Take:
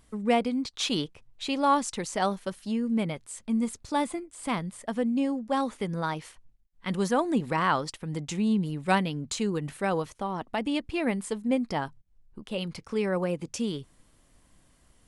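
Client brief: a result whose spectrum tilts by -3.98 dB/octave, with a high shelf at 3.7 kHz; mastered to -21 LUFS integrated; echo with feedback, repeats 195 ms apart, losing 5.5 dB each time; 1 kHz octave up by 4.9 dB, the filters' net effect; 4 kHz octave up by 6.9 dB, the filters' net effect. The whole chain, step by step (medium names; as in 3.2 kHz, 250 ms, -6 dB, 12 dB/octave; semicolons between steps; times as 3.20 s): peaking EQ 1 kHz +5.5 dB; treble shelf 3.7 kHz +4 dB; peaking EQ 4 kHz +6 dB; feedback delay 195 ms, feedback 53%, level -5.5 dB; trim +4.5 dB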